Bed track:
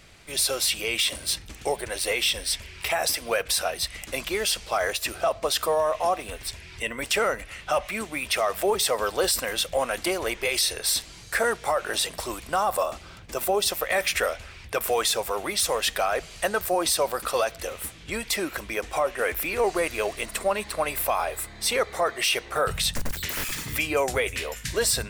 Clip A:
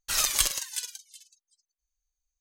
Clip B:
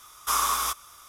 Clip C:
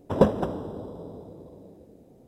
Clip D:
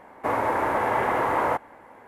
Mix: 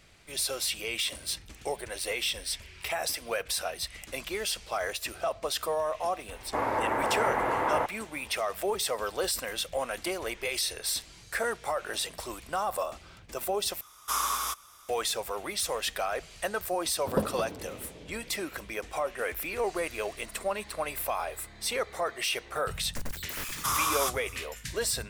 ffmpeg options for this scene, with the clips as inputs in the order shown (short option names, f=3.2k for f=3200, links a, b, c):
-filter_complex "[2:a]asplit=2[a][b];[0:a]volume=-6.5dB[c];[b]alimiter=limit=-18.5dB:level=0:latency=1:release=23[d];[c]asplit=2[e][f];[e]atrim=end=13.814[g];[a]atrim=end=1.08,asetpts=PTS-STARTPTS,volume=-4.5dB[h];[f]atrim=start=14.886[i];[4:a]atrim=end=2.07,asetpts=PTS-STARTPTS,volume=-4.5dB,afade=t=in:d=0.004:c=hsin,afade=t=out:st=2.066:d=0.004:c=hsin,adelay=6290[j];[3:a]atrim=end=2.27,asetpts=PTS-STARTPTS,volume=-9dB,afade=t=in:d=0.004:c=hsin,afade=t=out:st=2.266:d=0.004:c=hsin,adelay=16960[k];[d]atrim=end=1.08,asetpts=PTS-STARTPTS,volume=-0.5dB,afade=t=in:d=0.004:c=hsin,afade=t=out:st=1.076:d=0.004:c=hsin,adelay=23370[l];[g][h]acrossfade=d=0.004:c1=hsin:c2=hsin[m];[m][i]acrossfade=d=0.004:c1=hsin:c2=hsin[n];[n][j][k][l]amix=inputs=4:normalize=0"